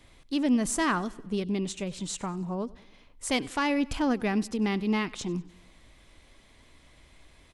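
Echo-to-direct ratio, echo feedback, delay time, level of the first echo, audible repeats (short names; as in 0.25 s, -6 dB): -21.0 dB, 53%, 96 ms, -22.5 dB, 3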